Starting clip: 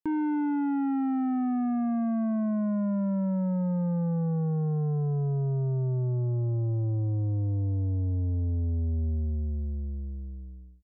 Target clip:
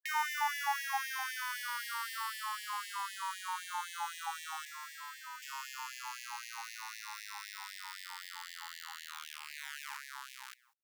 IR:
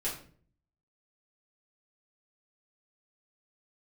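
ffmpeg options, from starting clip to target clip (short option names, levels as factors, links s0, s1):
-filter_complex "[0:a]asplit=2[s0][s1];[s1]acrusher=bits=4:dc=4:mix=0:aa=0.000001,volume=0.316[s2];[s0][s2]amix=inputs=2:normalize=0,asettb=1/sr,asplit=3[s3][s4][s5];[s3]atrim=end=4.654[s6];[s4]atrim=start=4.65:end=5.42,asetpts=PTS-STARTPTS,afade=t=in:d=0.004:c=qsin,afade=t=out:st=0.766:d=0.004:c=qsin,equalizer=f=87:w=1.2:g=10[s7];[s5]atrim=start=5.416[s8];[s6][s7]acrossfade=d=0.004:c1=hsin:c2=qsin[s9];[s9][s8]acrossfade=d=0.004:c1=qsin:c2=hsin,aeval=exprs='sgn(val(0))*max(abs(val(0))-0.00266,0)':c=same,acrossover=split=390|3000[s10][s11][s12];[s11]acompressor=threshold=0.0158:ratio=6[s13];[s10][s13][s12]amix=inputs=3:normalize=0,alimiter=level_in=1.12:limit=0.0631:level=0:latency=1,volume=0.891,asoftclip=type=hard:threshold=0.0422,afftfilt=real='re*gte(b*sr/1024,790*pow(1700/790,0.5+0.5*sin(2*PI*3.9*pts/sr)))':imag='im*gte(b*sr/1024,790*pow(1700/790,0.5+0.5*sin(2*PI*3.9*pts/sr)))':win_size=1024:overlap=0.75,volume=7.5"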